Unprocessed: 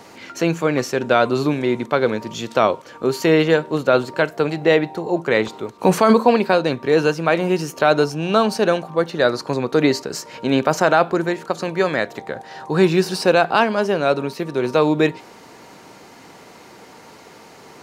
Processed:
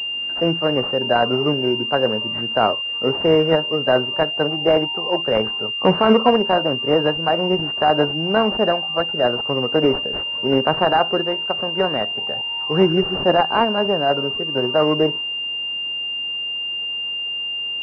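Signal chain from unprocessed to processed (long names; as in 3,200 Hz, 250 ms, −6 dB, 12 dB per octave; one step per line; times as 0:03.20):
noise reduction from a noise print of the clip's start 7 dB
formants moved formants +2 semitones
switching amplifier with a slow clock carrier 2,800 Hz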